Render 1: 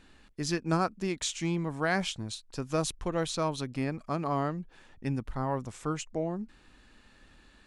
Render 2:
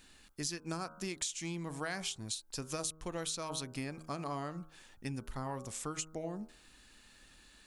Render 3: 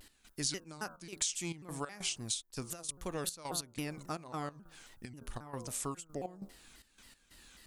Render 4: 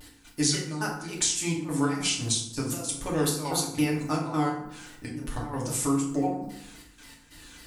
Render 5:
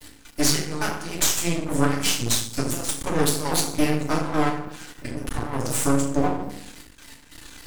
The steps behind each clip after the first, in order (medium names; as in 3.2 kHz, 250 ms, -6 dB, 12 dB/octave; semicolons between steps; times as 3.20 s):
pre-emphasis filter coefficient 0.8; de-hum 79.02 Hz, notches 20; compression 10:1, threshold -43 dBFS, peak gain reduction 12 dB; trim +8.5 dB
treble shelf 9.8 kHz +9 dB; trance gate "x..xxxxx..x" 187 bpm -12 dB; vibrato with a chosen wave saw down 3.7 Hz, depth 250 cents; trim +1 dB
FDN reverb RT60 0.71 s, low-frequency decay 1.4×, high-frequency decay 0.65×, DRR -4 dB; trim +5 dB
half-wave rectifier; trim +8.5 dB